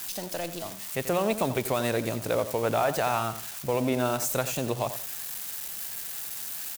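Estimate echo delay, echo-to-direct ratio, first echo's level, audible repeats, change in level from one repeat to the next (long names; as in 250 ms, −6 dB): 88 ms, −12.0 dB, −12.0 dB, 2, −12.5 dB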